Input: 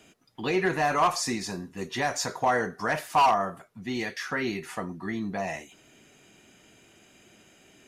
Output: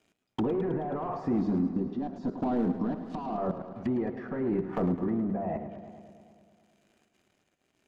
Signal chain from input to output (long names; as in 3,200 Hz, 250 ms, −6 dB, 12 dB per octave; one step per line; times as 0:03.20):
high-shelf EQ 2,500 Hz −7.5 dB
leveller curve on the samples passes 3
noise gate −52 dBFS, range −11 dB
mains-hum notches 50/100/150/200 Hz
downward compressor 3 to 1, threshold −23 dBFS, peak gain reduction 5.5 dB
0:01.38–0:03.38: octave-band graphic EQ 125/250/500/1,000/2,000/4,000/8,000 Hz −10/+11/−11/−4/−11/+9/+4 dB
output level in coarse steps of 15 dB
treble cut that deepens with the level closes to 650 Hz, closed at −31.5 dBFS
shaped tremolo triangle 0.89 Hz, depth 55%
hard clipping −27 dBFS, distortion −24 dB
feedback echo with a swinging delay time 107 ms, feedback 72%, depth 84 cents, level −11.5 dB
level +5.5 dB